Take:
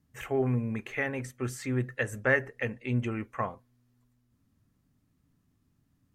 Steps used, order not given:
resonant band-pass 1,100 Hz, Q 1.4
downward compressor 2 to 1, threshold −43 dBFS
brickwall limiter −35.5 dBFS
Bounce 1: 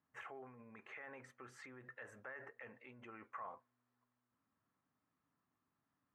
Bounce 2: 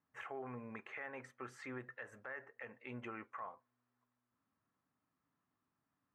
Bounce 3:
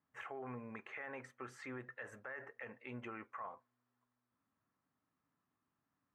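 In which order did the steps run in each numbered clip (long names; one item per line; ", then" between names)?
brickwall limiter, then resonant band-pass, then downward compressor
resonant band-pass, then downward compressor, then brickwall limiter
resonant band-pass, then brickwall limiter, then downward compressor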